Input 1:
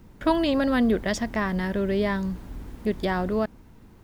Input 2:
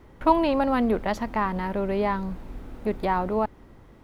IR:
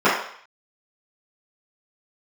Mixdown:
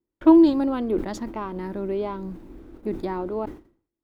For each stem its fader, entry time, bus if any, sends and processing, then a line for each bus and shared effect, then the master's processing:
-2.0 dB, 0.00 s, no send, HPF 40 Hz; photocell phaser 1.6 Hz; auto duck -12 dB, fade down 1.05 s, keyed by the second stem
-8.5 dB, 0.00 s, no send, dry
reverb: off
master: gate -47 dBFS, range -34 dB; bell 330 Hz +15 dB 0.46 oct; sustainer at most 130 dB/s

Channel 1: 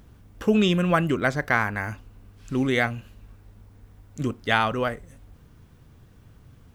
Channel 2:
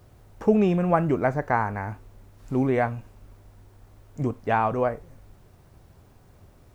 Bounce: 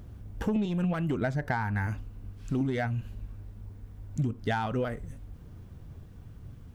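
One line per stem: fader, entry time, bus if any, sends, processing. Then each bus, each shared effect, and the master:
-3.5 dB, 0.00 s, no send, low shelf 350 Hz +8.5 dB; soft clip -12 dBFS, distortion -15 dB
+2.5 dB, 0.00 s, no send, spectral contrast raised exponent 1.6; step gate "xxxxx.x..x...xx" 161 bpm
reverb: off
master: compressor 16:1, threshold -25 dBFS, peak gain reduction 13.5 dB

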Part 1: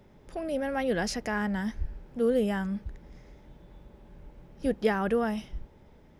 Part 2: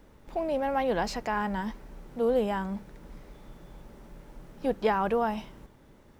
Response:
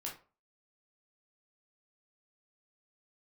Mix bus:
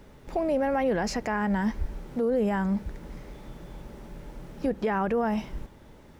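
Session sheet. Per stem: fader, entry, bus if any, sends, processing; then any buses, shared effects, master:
+1.5 dB, 0.00 s, no send, dry
+2.0 dB, 0.00 s, no send, high shelf 2700 Hz +12 dB; compressor 2:1, threshold -33 dBFS, peak gain reduction 7.5 dB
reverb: off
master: high shelf 4700 Hz -11 dB; limiter -18 dBFS, peak gain reduction 9 dB

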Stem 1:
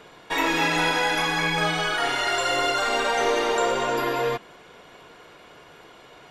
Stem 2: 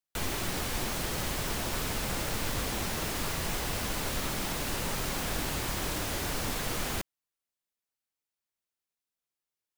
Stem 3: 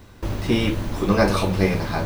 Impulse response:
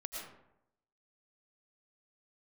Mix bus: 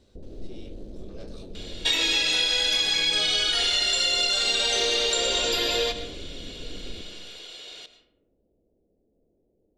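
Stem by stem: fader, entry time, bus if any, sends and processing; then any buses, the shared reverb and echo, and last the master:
-7.5 dB, 1.55 s, no bus, send -6.5 dB, bell 3000 Hz +13.5 dB 2.4 oct
-2.5 dB, 0.00 s, bus A, send -4 dB, Gaussian blur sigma 18 samples; fast leveller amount 50%
-12.5 dB, 0.00 s, bus A, no send, LPF 2200 Hz 6 dB/oct
bus A: 0.0 dB, soft clip -28.5 dBFS, distortion -14 dB; compressor 2.5:1, threshold -47 dBFS, peak gain reduction 10.5 dB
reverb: on, RT60 0.80 s, pre-delay 70 ms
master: graphic EQ 125/500/1000/2000/4000/8000 Hz -9/+6/-11/-6/+10/+10 dB; compressor 10:1, threshold -20 dBFS, peak gain reduction 9.5 dB

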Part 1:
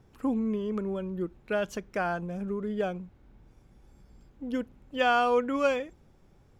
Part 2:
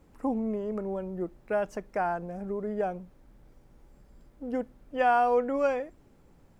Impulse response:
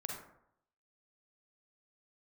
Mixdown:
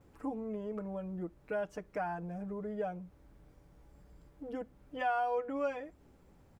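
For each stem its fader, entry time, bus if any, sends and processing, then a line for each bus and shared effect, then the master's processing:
-6.5 dB, 0.00 s, no send, Bessel low-pass 2100 Hz, order 2; bell 62 Hz +6.5 dB 0.77 oct
-3.0 dB, 7.2 ms, no send, HPF 130 Hz 6 dB/oct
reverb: off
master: compressor 1.5:1, threshold -44 dBFS, peak gain reduction 9 dB

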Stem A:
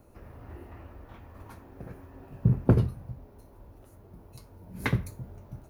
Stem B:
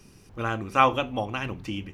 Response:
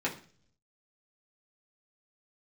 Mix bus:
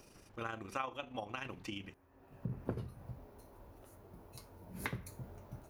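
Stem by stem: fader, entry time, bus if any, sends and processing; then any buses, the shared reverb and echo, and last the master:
0.0 dB, 0.00 s, no send, auto duck -18 dB, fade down 0.35 s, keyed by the second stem
-3.5 dB, 0.00 s, no send, AM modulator 26 Hz, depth 35%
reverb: off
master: low shelf 300 Hz -8 dB; compressor 4:1, threshold -38 dBFS, peak gain reduction 16 dB

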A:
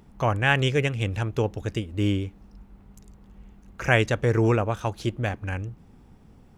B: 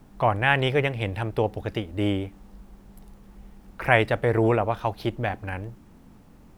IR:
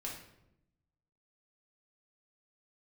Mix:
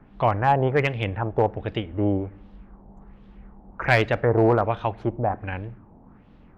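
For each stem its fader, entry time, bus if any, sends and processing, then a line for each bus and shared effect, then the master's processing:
-15.5 dB, 0.00 s, no send, spectral gate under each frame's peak -25 dB strong
-0.5 dB, 0.00 s, send -19 dB, LFO low-pass sine 1.3 Hz 770–3600 Hz; one-sided clip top -11 dBFS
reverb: on, RT60 0.85 s, pre-delay 5 ms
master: high shelf 3100 Hz -10 dB

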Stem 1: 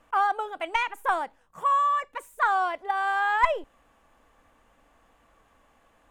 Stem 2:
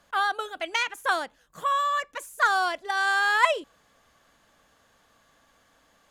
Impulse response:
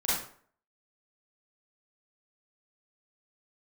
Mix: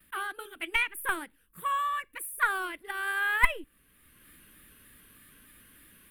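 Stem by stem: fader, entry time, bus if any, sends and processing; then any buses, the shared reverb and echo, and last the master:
+2.0 dB, 0.00 s, no send, upward expander 1.5:1, over -39 dBFS
+2.0 dB, 0.00 s, no send, compressor, threshold -30 dBFS, peak gain reduction 15 dB; shaped vibrato square 3.3 Hz, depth 100 cents; auto duck -14 dB, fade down 0.70 s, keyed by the first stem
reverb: off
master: EQ curve 340 Hz 0 dB, 720 Hz -23 dB, 1600 Hz -4 dB, 2600 Hz 0 dB, 6700 Hz -16 dB, 9900 Hz +13 dB; AGC gain up to 6 dB

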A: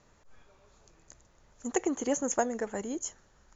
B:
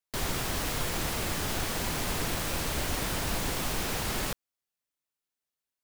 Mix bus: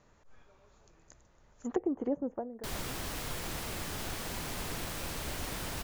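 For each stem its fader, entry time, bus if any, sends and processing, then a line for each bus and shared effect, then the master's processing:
2.23 s -1 dB -> 2.66 s -13.5 dB, 0.00 s, no send, treble ducked by the level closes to 550 Hz, closed at -27 dBFS; high shelf 4400 Hz -6 dB
-7.0 dB, 2.50 s, no send, dry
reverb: off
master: dry

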